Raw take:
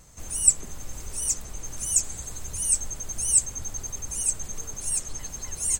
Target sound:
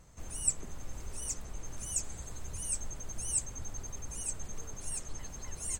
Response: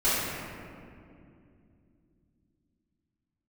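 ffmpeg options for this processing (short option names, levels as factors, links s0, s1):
-af "highshelf=f=4100:g=-10,volume=0.631"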